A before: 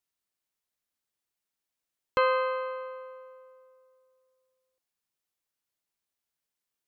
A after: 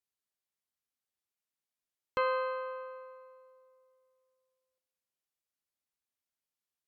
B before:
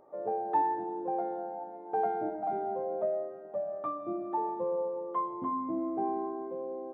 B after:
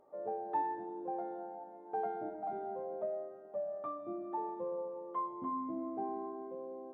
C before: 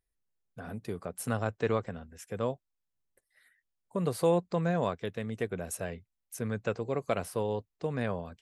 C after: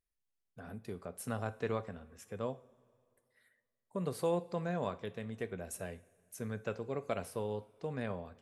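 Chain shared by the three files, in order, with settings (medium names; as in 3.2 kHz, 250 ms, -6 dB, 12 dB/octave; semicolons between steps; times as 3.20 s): two-slope reverb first 0.38 s, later 2.3 s, from -18 dB, DRR 12 dB; trim -6.5 dB; Vorbis 192 kbps 48 kHz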